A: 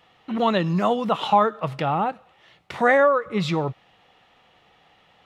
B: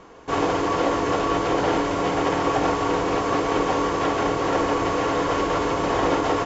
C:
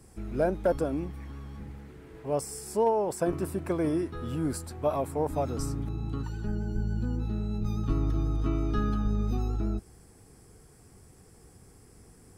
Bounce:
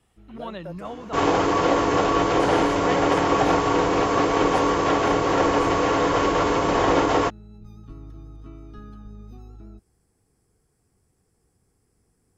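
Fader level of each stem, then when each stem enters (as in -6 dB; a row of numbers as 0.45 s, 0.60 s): -14.5 dB, +2.0 dB, -13.5 dB; 0.00 s, 0.85 s, 0.00 s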